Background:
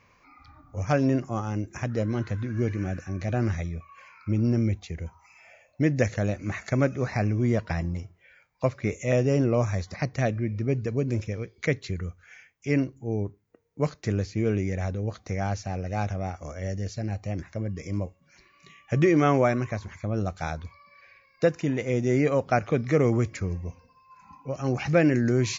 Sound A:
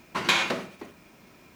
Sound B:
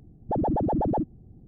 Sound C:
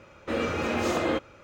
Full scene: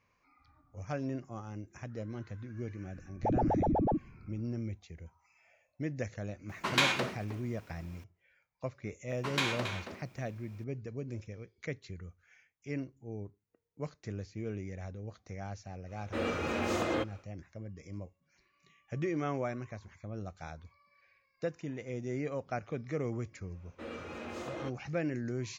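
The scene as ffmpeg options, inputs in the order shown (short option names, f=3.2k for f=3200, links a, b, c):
-filter_complex "[1:a]asplit=2[a][b];[3:a]asplit=2[c][d];[0:a]volume=-13.5dB[e];[b]asplit=2[f][g];[g]adelay=274.1,volume=-7dB,highshelf=f=4k:g=-6.17[h];[f][h]amix=inputs=2:normalize=0[i];[d]highshelf=f=12k:g=-6[j];[2:a]atrim=end=1.47,asetpts=PTS-STARTPTS,volume=-4dB,afade=t=in:d=0.004:c=hsin,afade=t=out:st=1.466:d=0.004:c=hsin,adelay=2940[k];[a]atrim=end=1.55,asetpts=PTS-STARTPTS,volume=-4.5dB,afade=t=in:d=0.004:c=hsin,afade=t=out:st=1.546:d=0.004:c=hsin,adelay=6490[l];[i]atrim=end=1.55,asetpts=PTS-STARTPTS,volume=-9.5dB,afade=t=in:d=0.004:c=hsin,afade=t=out:st=1.546:d=0.004:c=hsin,adelay=9090[m];[c]atrim=end=1.43,asetpts=PTS-STARTPTS,volume=-5.5dB,afade=t=in:d=0.1,afade=t=out:st=1.33:d=0.1,adelay=15850[n];[j]atrim=end=1.43,asetpts=PTS-STARTPTS,volume=-15dB,afade=t=in:d=0.1,afade=t=out:st=1.33:d=0.1,adelay=23510[o];[e][k][l][m][n][o]amix=inputs=6:normalize=0"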